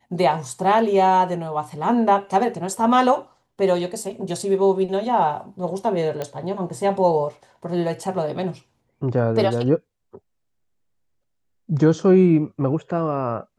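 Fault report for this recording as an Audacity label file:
6.220000	6.220000	pop -14 dBFS

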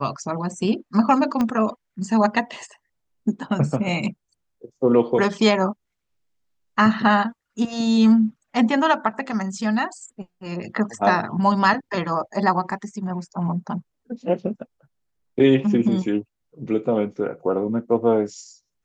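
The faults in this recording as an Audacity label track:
1.410000	1.410000	pop -11 dBFS

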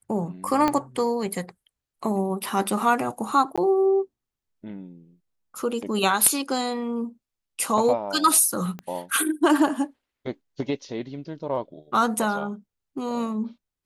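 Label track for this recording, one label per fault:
0.680000	0.680000	pop -9 dBFS
3.560000	3.580000	dropout 16 ms
8.790000	8.790000	pop -22 dBFS

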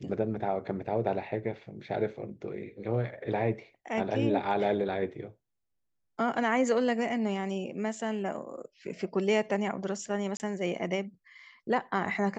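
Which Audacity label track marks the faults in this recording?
10.370000	10.400000	dropout 29 ms

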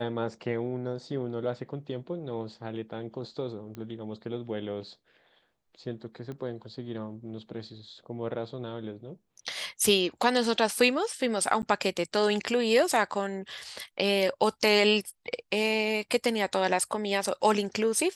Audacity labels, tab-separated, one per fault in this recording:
3.750000	3.750000	pop -27 dBFS
6.320000	6.320000	pop -28 dBFS
11.620000	11.630000	dropout 9.6 ms

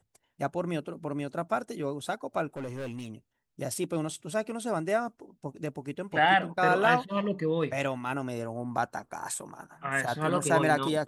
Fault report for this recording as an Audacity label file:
2.560000	3.110000	clipped -33 dBFS

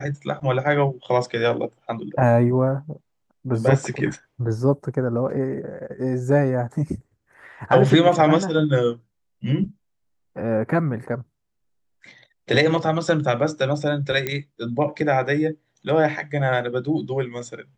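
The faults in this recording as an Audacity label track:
14.270000	14.270000	pop -10 dBFS

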